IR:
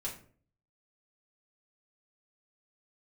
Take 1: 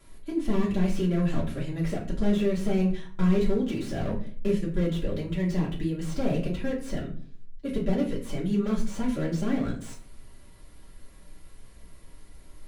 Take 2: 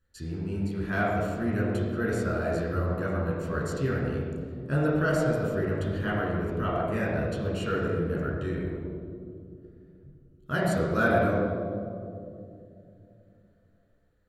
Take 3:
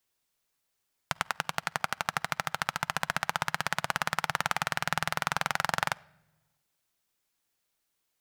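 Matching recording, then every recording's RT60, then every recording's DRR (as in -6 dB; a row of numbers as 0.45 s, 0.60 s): 1; 0.45 s, 2.6 s, no single decay rate; -5.0 dB, -5.5 dB, 19.0 dB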